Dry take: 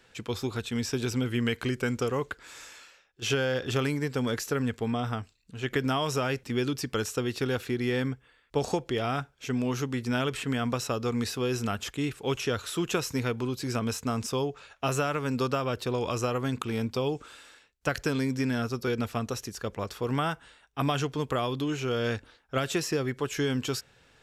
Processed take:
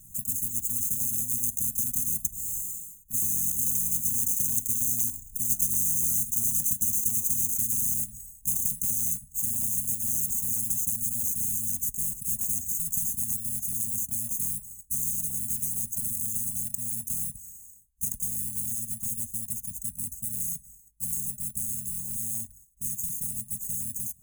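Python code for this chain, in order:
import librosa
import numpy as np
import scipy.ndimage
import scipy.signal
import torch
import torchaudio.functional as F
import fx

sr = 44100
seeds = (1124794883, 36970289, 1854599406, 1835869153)

y = fx.bit_reversed(x, sr, seeds[0], block=128)
y = fx.doppler_pass(y, sr, speed_mps=9, closest_m=6.3, pass_at_s=5.75)
y = fx.brickwall_bandstop(y, sr, low_hz=260.0, high_hz=6000.0)
y = y + 0.37 * np.pad(y, (int(1.4 * sr / 1000.0), 0))[:len(y)]
y = fx.spectral_comp(y, sr, ratio=10.0)
y = y * 10.0 ** (7.5 / 20.0)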